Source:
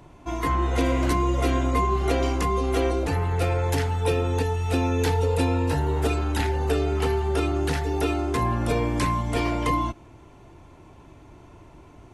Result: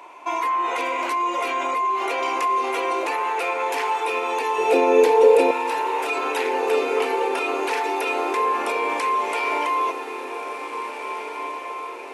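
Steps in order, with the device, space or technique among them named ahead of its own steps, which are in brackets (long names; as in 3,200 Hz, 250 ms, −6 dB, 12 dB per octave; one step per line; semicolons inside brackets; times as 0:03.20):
laptop speaker (high-pass filter 400 Hz 24 dB per octave; parametric band 980 Hz +11 dB 0.5 octaves; parametric band 2,400 Hz +11.5 dB 0.45 octaves; brickwall limiter −21 dBFS, peak gain reduction 13 dB)
high-pass filter 61 Hz
0:04.58–0:05.51: low shelf with overshoot 740 Hz +11.5 dB, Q 1.5
feedback delay with all-pass diffusion 1,821 ms, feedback 51%, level −8.5 dB
level +4.5 dB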